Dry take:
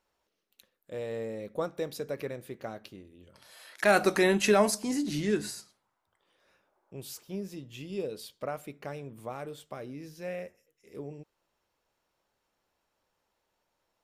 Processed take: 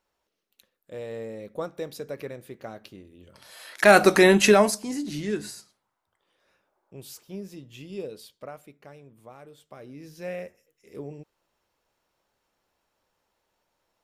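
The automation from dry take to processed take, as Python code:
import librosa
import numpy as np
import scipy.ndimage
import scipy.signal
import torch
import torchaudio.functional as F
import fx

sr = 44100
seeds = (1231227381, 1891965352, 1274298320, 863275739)

y = fx.gain(x, sr, db=fx.line((2.65, 0.0), (3.82, 8.0), (4.45, 8.0), (4.85, -0.5), (8.03, -0.5), (8.81, -8.0), (9.51, -8.0), (10.22, 3.0)))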